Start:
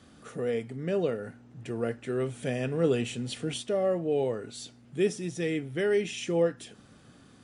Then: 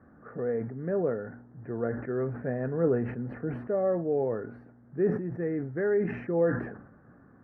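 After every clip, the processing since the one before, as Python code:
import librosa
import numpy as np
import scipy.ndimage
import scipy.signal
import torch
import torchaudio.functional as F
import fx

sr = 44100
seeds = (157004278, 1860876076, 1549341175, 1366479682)

y = scipy.signal.sosfilt(scipy.signal.ellip(4, 1.0, 50, 1700.0, 'lowpass', fs=sr, output='sos'), x)
y = fx.sustainer(y, sr, db_per_s=74.0)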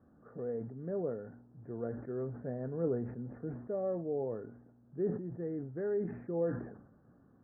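y = scipy.ndimage.gaussian_filter1d(x, 6.2, mode='constant')
y = F.gain(torch.from_numpy(y), -7.0).numpy()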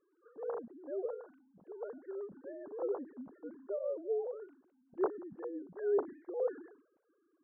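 y = fx.sine_speech(x, sr)
y = F.gain(torch.from_numpy(y), -2.0).numpy()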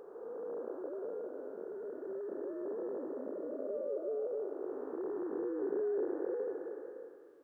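y = fx.spec_blur(x, sr, span_ms=870.0)
y = y + 10.0 ** (-17.0 / 20.0) * np.pad(y, (int(557 * sr / 1000.0), 0))[:len(y)]
y = F.gain(torch.from_numpy(y), 9.0).numpy()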